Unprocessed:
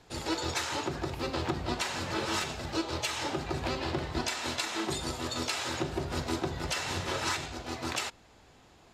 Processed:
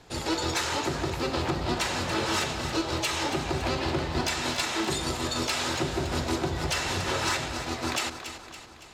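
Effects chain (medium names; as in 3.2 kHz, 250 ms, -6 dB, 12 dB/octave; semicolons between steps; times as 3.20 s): sine folder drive 4 dB, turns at -17 dBFS; two-band feedback delay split 710 Hz, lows 213 ms, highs 281 ms, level -10 dB; trim -3 dB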